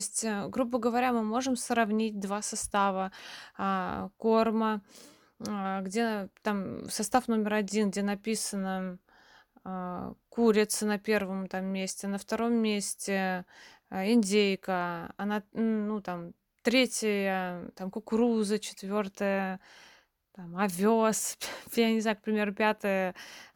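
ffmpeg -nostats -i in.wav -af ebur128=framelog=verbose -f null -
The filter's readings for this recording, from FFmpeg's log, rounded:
Integrated loudness:
  I:         -30.1 LUFS
  Threshold: -40.6 LUFS
Loudness range:
  LRA:         2.3 LU
  Threshold: -50.7 LUFS
  LRA low:   -31.8 LUFS
  LRA high:  -29.5 LUFS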